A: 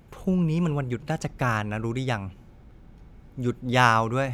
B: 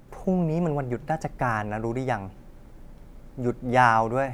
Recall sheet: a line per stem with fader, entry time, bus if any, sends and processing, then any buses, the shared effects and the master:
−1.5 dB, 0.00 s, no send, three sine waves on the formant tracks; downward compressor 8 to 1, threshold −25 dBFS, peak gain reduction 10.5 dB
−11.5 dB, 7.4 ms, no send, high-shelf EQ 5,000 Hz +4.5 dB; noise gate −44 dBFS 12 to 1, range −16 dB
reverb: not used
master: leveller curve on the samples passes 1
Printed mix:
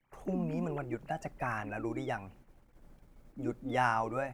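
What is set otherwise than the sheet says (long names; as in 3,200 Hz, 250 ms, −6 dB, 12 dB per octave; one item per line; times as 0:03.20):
stem A −1.5 dB → −11.0 dB
master: missing leveller curve on the samples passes 1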